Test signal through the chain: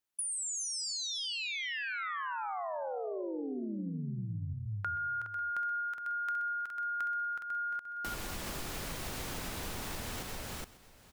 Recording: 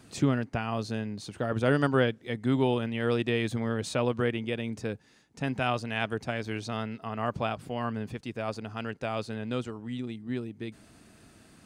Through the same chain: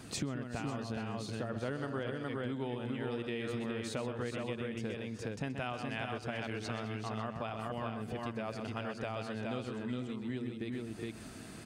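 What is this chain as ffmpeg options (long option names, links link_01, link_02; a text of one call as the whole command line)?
ffmpeg -i in.wav -filter_complex "[0:a]asplit=2[link_01][link_02];[link_02]aecho=0:1:127|368|379|416:0.376|0.141|0.158|0.596[link_03];[link_01][link_03]amix=inputs=2:normalize=0,acompressor=threshold=-41dB:ratio=6,asplit=2[link_04][link_05];[link_05]aecho=0:1:545:0.133[link_06];[link_04][link_06]amix=inputs=2:normalize=0,volume=5dB" out.wav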